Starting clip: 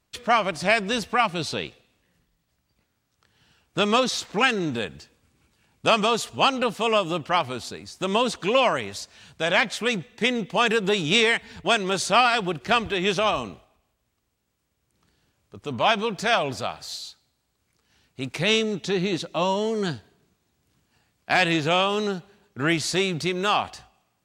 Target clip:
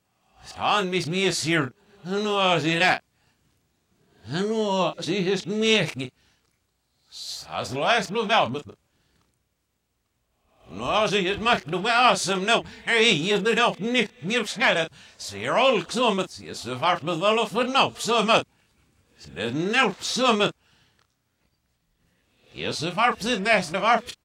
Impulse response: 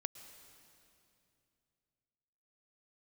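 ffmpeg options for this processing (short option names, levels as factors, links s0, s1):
-filter_complex "[0:a]areverse,asplit=2[s0][s1];[s1]adelay=32,volume=0.355[s2];[s0][s2]amix=inputs=2:normalize=0"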